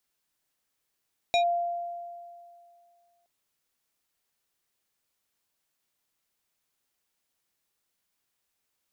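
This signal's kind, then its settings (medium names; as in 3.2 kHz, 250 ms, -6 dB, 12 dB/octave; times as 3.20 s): FM tone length 1.92 s, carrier 693 Hz, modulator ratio 4.5, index 0.96, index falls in 0.10 s linear, decay 2.30 s, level -19 dB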